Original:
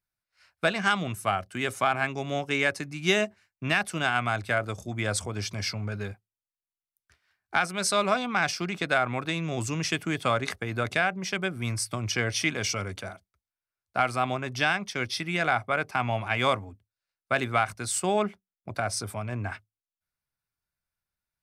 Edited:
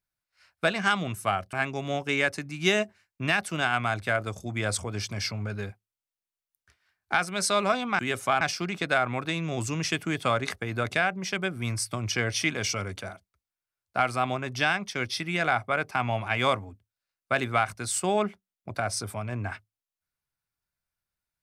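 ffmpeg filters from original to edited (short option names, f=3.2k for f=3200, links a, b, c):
-filter_complex "[0:a]asplit=4[a][b][c][d];[a]atrim=end=1.532[e];[b]atrim=start=1.948:end=8.412[f];[c]atrim=start=1.528:end=1.952[g];[d]atrim=start=8.408[h];[e][f]acrossfade=d=0.004:c1=hsin:c2=hsin[i];[i][g]acrossfade=d=0.004:c1=hsin:c2=hsin[j];[j][h]acrossfade=d=0.004:c1=hsin:c2=hsin"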